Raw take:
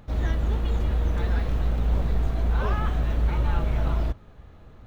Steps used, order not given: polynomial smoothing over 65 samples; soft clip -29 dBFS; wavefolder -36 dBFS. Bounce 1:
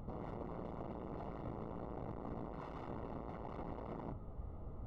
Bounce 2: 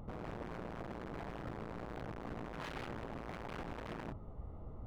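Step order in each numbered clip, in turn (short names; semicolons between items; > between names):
soft clip > wavefolder > polynomial smoothing; polynomial smoothing > soft clip > wavefolder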